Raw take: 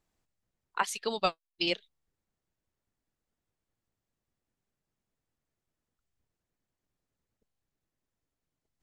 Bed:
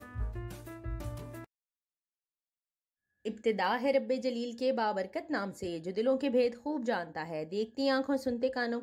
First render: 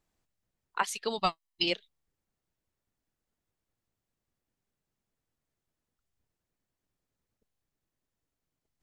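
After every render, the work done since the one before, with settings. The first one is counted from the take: 1.18–1.64 comb 1 ms, depth 69%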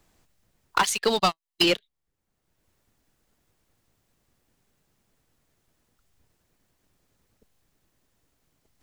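sample leveller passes 3; three-band squash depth 70%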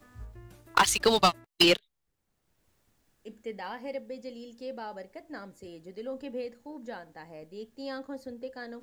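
add bed -8.5 dB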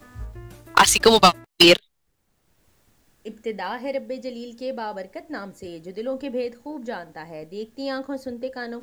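gain +9 dB; limiter -1 dBFS, peak gain reduction 2 dB

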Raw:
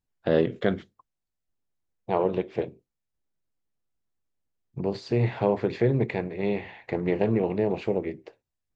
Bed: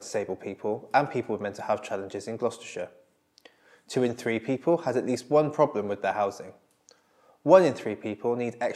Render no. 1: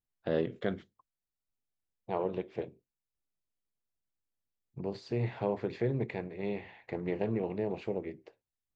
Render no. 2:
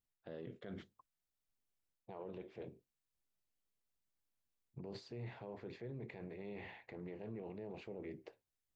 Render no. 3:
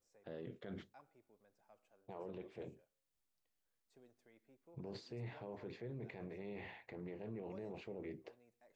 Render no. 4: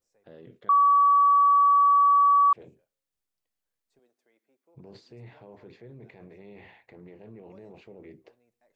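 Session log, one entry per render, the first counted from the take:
gain -8.5 dB
reverse; compressor 6:1, threshold -39 dBFS, peak gain reduction 13.5 dB; reverse; limiter -38.5 dBFS, peak gain reduction 10.5 dB
add bed -40.5 dB
0.69–2.53 bleep 1140 Hz -15.5 dBFS; 3.99–4.75 HPF 300 Hz

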